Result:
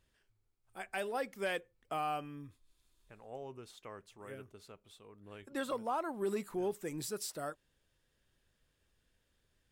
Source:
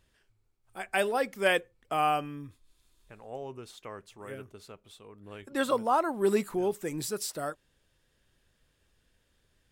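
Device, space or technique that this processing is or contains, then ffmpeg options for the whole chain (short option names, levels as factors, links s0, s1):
soft clipper into limiter: -af "asoftclip=type=tanh:threshold=0.188,alimiter=limit=0.0891:level=0:latency=1:release=263,volume=0.501"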